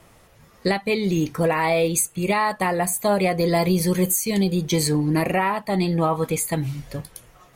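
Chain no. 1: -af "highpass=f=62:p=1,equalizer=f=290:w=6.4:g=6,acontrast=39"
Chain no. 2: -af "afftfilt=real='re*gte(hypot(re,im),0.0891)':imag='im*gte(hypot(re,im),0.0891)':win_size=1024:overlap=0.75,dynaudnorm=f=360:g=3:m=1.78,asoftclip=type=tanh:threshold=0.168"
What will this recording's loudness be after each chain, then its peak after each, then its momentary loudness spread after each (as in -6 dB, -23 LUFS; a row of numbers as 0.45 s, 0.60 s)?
-16.0 LUFS, -21.0 LUFS; -5.0 dBFS, -15.5 dBFS; 6 LU, 5 LU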